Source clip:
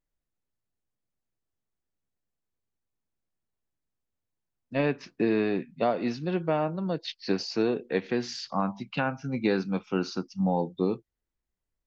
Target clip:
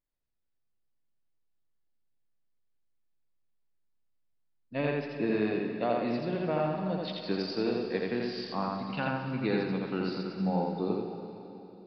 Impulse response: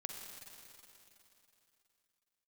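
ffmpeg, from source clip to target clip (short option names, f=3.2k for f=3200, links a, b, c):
-filter_complex "[0:a]asplit=2[a][b];[1:a]atrim=start_sample=2205,adelay=84[c];[b][c]afir=irnorm=-1:irlink=0,volume=2dB[d];[a][d]amix=inputs=2:normalize=0,aresample=11025,aresample=44100,volume=-5.5dB"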